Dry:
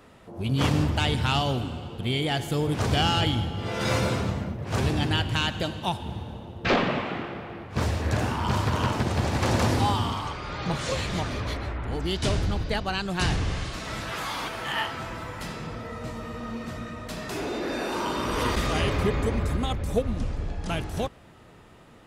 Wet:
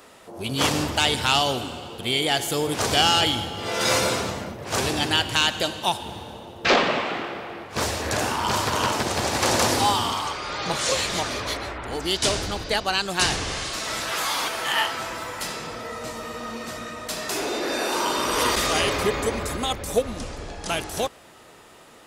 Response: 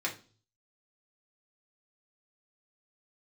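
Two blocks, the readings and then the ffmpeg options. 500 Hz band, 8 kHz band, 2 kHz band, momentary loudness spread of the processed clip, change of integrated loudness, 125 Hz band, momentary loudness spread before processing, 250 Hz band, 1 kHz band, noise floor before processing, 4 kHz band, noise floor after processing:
+4.0 dB, +12.0 dB, +5.5 dB, 13 LU, +4.0 dB, -7.0 dB, 11 LU, -1.5 dB, +5.0 dB, -51 dBFS, +8.0 dB, -49 dBFS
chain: -af "bass=f=250:g=-13,treble=f=4000:g=8,volume=1.78"

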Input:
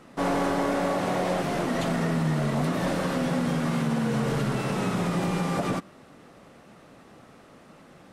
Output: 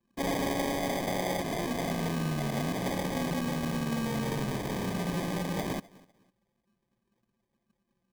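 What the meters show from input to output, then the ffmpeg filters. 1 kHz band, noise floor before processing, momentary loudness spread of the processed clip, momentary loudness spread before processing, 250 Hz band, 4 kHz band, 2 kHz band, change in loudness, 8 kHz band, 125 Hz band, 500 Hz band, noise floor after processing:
-5.5 dB, -52 dBFS, 2 LU, 2 LU, -5.5 dB, -1.5 dB, -4.5 dB, -5.0 dB, -0.5 dB, -6.0 dB, -5.5 dB, -80 dBFS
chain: -af "highpass=f=110:p=1,anlmdn=2.51,aecho=1:1:253|506:0.0708|0.0177,acrusher=samples=32:mix=1:aa=0.000001,volume=0.596"

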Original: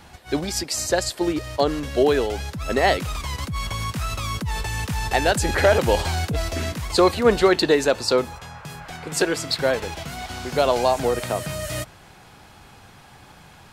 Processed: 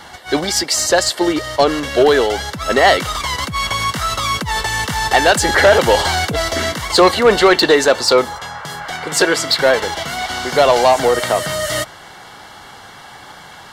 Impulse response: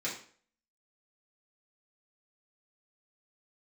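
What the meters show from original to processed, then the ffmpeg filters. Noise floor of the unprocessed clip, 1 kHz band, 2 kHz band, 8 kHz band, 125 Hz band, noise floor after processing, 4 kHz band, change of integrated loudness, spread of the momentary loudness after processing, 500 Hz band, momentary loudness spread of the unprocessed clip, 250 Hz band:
-48 dBFS, +9.0 dB, +10.0 dB, +9.0 dB, +0.5 dB, -38 dBFS, +10.0 dB, +7.5 dB, 10 LU, +7.0 dB, 12 LU, +4.5 dB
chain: -filter_complex "[0:a]asuperstop=centerf=2500:order=20:qfactor=8,asplit=2[s0][s1];[s1]highpass=f=720:p=1,volume=5.62,asoftclip=type=tanh:threshold=0.596[s2];[s0][s2]amix=inputs=2:normalize=0,lowpass=f=5500:p=1,volume=0.501,volume=1.5"

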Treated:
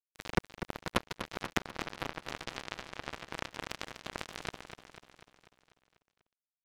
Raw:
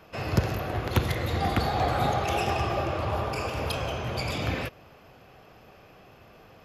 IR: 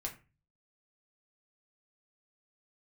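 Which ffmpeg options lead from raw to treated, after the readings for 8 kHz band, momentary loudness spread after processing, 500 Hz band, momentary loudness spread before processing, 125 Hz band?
-5.0 dB, 8 LU, -13.0 dB, 5 LU, -18.0 dB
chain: -filter_complex "[0:a]bandreject=f=830:w=12,acrossover=split=3400[s0][s1];[s1]acompressor=threshold=0.00251:ratio=4:attack=1:release=60[s2];[s0][s2]amix=inputs=2:normalize=0,highpass=81,equalizer=f=220:t=o:w=0.93:g=5,aecho=1:1:6.1:0.62,aeval=exprs='sgn(val(0))*max(abs(val(0))-0.0251,0)':c=same,acompressor=threshold=0.0251:ratio=12,acrusher=bits=3:mix=0:aa=0.5,asoftclip=type=tanh:threshold=0.0841,asplit=2[s3][s4];[s4]aecho=0:1:246|492|738|984|1230|1476|1722:0.316|0.187|0.11|0.0649|0.0383|0.0226|0.0133[s5];[s3][s5]amix=inputs=2:normalize=0,volume=3.76"

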